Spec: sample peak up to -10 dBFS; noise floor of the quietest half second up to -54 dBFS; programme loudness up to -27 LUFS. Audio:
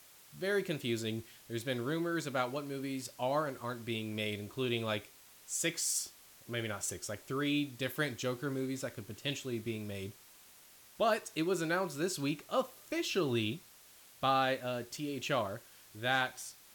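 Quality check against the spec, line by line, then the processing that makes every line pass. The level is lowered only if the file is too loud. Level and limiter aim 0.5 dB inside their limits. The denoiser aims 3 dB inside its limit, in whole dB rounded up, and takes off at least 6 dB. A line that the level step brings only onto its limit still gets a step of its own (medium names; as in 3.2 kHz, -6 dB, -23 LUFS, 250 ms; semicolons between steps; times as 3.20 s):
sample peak -18.5 dBFS: pass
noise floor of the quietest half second -59 dBFS: pass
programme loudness -35.5 LUFS: pass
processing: none needed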